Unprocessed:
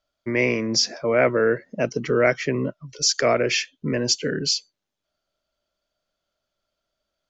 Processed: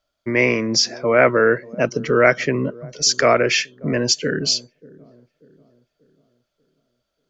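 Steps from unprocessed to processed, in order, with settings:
dynamic equaliser 1,300 Hz, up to +5 dB, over −32 dBFS, Q 1.1
delay with a low-pass on its return 588 ms, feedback 41%, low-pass 650 Hz, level −21 dB
level +3 dB

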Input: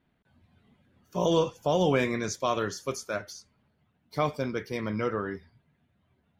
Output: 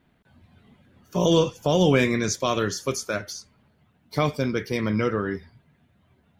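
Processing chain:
dynamic equaliser 840 Hz, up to −7 dB, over −39 dBFS, Q 0.78
level +8 dB

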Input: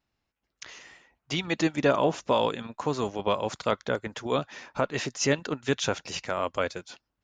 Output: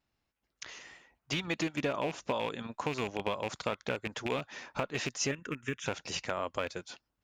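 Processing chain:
loose part that buzzes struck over −33 dBFS, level −20 dBFS
downward compressor 5 to 1, threshold −28 dBFS, peak gain reduction 10 dB
0:05.31–0:05.86: phaser with its sweep stopped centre 1,800 Hz, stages 4
level −1.5 dB

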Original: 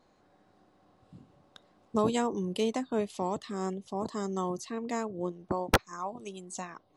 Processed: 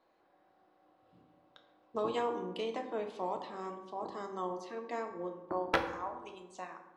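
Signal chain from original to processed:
three-way crossover with the lows and the highs turned down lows −14 dB, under 330 Hz, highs −19 dB, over 4,300 Hz
convolution reverb RT60 1.0 s, pre-delay 3 ms, DRR 3.5 dB
level −4.5 dB

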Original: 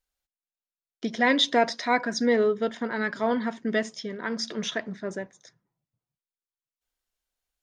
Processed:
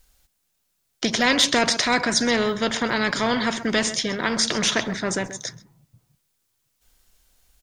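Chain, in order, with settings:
bass and treble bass +9 dB, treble +4 dB
single-tap delay 131 ms −23.5 dB
every bin compressed towards the loudest bin 2 to 1
level +3.5 dB

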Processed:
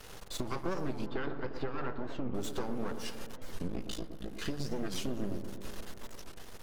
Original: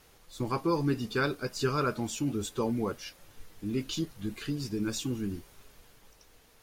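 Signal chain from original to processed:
high-shelf EQ 11,000 Hz −9 dB
notch filter 2,300 Hz, Q 11
hum removal 148 Hz, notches 33
downward compressor 4 to 1, threshold −47 dBFS, peak gain reduction 19.5 dB
half-wave rectification
0:01.06–0:02.35: high-frequency loss of the air 350 metres
0:03.68–0:04.39: amplitude modulation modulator 55 Hz, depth 95%
delay with a low-pass on its return 118 ms, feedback 72%, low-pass 1,300 Hz, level −8.5 dB
wow of a warped record 45 rpm, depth 250 cents
level +14 dB

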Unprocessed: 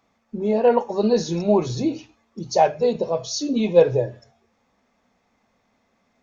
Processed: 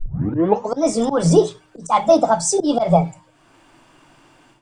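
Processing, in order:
turntable start at the beginning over 1.09 s
dynamic equaliser 230 Hz, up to +4 dB, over −31 dBFS, Q 6.8
volume swells 227 ms
automatic gain control gain up to 16 dB
on a send at −20.5 dB: low shelf with overshoot 140 Hz +13 dB, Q 3 + convolution reverb RT60 0.40 s, pre-delay 3 ms
on the sum: wrong playback speed 33 rpm record played at 45 rpm
level −1 dB

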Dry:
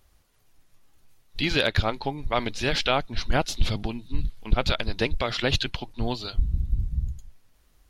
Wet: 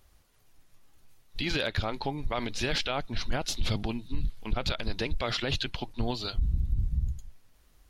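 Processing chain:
brickwall limiter −19 dBFS, peak gain reduction 10.5 dB

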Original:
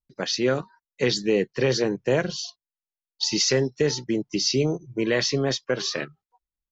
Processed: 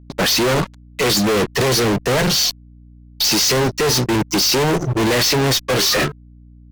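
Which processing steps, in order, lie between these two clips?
fuzz pedal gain 46 dB, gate −49 dBFS
mains hum 60 Hz, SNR 25 dB
level −2 dB

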